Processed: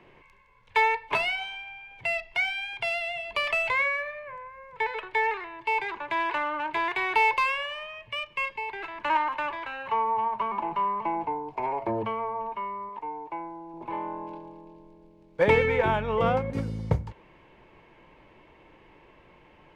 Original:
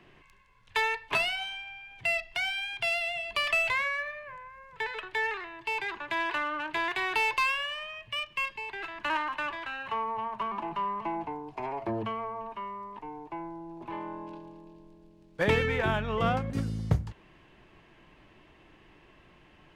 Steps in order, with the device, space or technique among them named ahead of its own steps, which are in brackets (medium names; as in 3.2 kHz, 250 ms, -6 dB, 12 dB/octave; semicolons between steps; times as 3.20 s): 12.89–13.74 s: bass shelf 240 Hz -8 dB; inside a helmet (treble shelf 4.8 kHz -7 dB; small resonant body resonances 510/900/2200 Hz, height 9 dB, ringing for 20 ms)